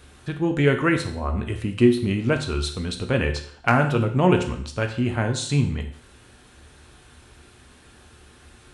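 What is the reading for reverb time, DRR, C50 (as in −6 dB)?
non-exponential decay, 4.0 dB, 9.5 dB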